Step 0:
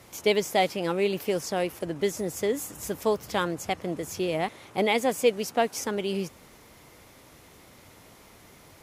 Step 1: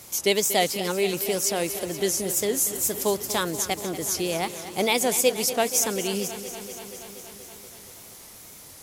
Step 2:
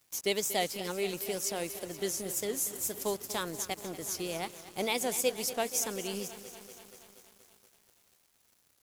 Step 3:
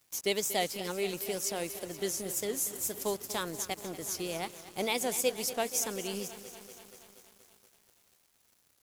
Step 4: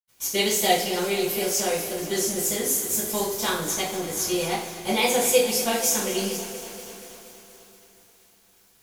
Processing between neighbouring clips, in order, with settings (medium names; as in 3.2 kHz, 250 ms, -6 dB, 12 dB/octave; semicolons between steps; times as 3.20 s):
wow and flutter 94 cents; tone controls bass 0 dB, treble +14 dB; bit-crushed delay 238 ms, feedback 80%, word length 8-bit, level -13 dB
crossover distortion -41 dBFS; trim -8 dB
no audible change
reverberation, pre-delay 76 ms; trim +8.5 dB